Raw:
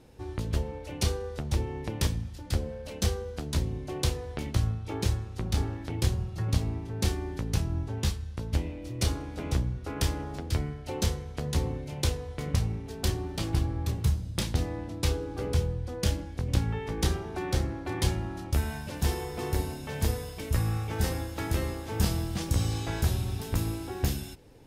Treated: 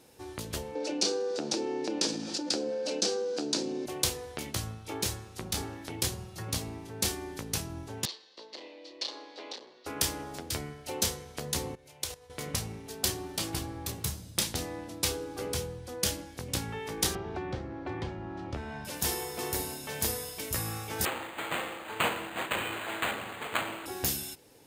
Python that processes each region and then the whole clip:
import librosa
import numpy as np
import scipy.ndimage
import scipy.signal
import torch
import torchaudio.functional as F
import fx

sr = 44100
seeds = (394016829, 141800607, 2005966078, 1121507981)

y = fx.chain(x, sr, fx.cabinet(low_hz=210.0, low_slope=24, high_hz=6800.0, hz=(310.0, 490.0, 1100.0, 2000.0, 3200.0, 4700.0), db=(9, 3, -7, -9, -5, 4)),
    fx.env_flatten(amount_pct=70), at=(0.75, 3.86))
y = fx.chain(y, sr, fx.clip_hard(threshold_db=-27.5),
    fx.cabinet(low_hz=380.0, low_slope=24, high_hz=4700.0, hz=(430.0, 720.0, 1400.0, 2400.0, 4300.0), db=(-3, -4, -10, -5, 7)), at=(8.05, 9.86))
y = fx.chain(y, sr, fx.peak_eq(hz=220.0, db=-11.0, octaves=1.1),
    fx.level_steps(step_db=17), at=(11.75, 12.3))
y = fx.chain(y, sr, fx.spacing_loss(db_at_10k=37),
    fx.band_squash(depth_pct=100), at=(17.15, 18.85))
y = fx.chain(y, sr, fx.lower_of_two(delay_ms=9.3),
    fx.tilt_eq(slope=3.5),
    fx.resample_linear(factor=8), at=(21.05, 23.86))
y = fx.highpass(y, sr, hz=350.0, slope=6)
y = fx.high_shelf(y, sr, hz=5600.0, db=11.5)